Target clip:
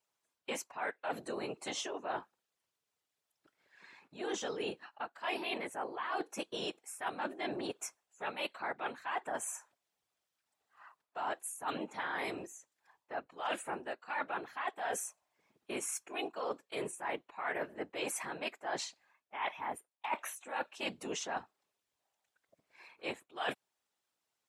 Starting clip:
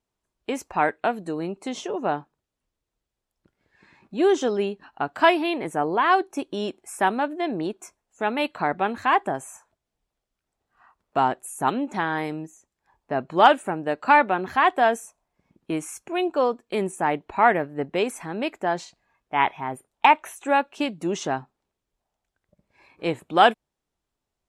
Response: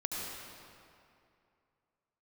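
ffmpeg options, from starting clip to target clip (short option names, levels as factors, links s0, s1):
-af "afftfilt=real='hypot(re,im)*cos(2*PI*random(0))':imag='hypot(re,im)*sin(2*PI*random(1))':win_size=512:overlap=0.75,highpass=f=1100:p=1,areverse,acompressor=threshold=0.00794:ratio=12,areverse,volume=2.37"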